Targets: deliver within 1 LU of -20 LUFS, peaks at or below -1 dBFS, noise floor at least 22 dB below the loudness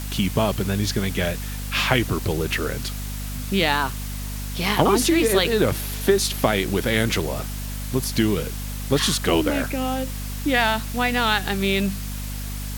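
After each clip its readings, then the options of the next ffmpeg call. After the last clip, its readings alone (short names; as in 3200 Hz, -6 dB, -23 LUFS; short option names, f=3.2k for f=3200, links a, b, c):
hum 50 Hz; harmonics up to 250 Hz; hum level -28 dBFS; noise floor -30 dBFS; noise floor target -45 dBFS; loudness -22.5 LUFS; peak -1.5 dBFS; loudness target -20.0 LUFS
-> -af "bandreject=f=50:t=h:w=6,bandreject=f=100:t=h:w=6,bandreject=f=150:t=h:w=6,bandreject=f=200:t=h:w=6,bandreject=f=250:t=h:w=6"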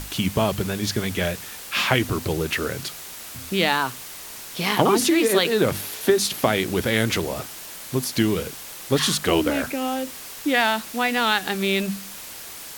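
hum none; noise floor -38 dBFS; noise floor target -45 dBFS
-> -af "afftdn=nr=7:nf=-38"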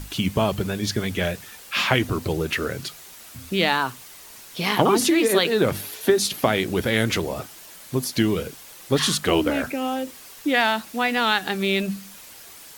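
noise floor -44 dBFS; noise floor target -45 dBFS
-> -af "afftdn=nr=6:nf=-44"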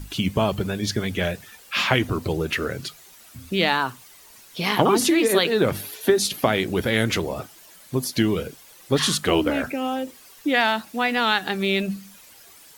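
noise floor -49 dBFS; loudness -22.5 LUFS; peak -2.0 dBFS; loudness target -20.0 LUFS
-> -af "volume=2.5dB,alimiter=limit=-1dB:level=0:latency=1"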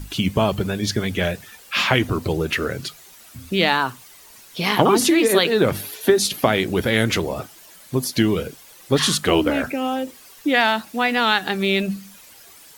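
loudness -20.0 LUFS; peak -1.0 dBFS; noise floor -46 dBFS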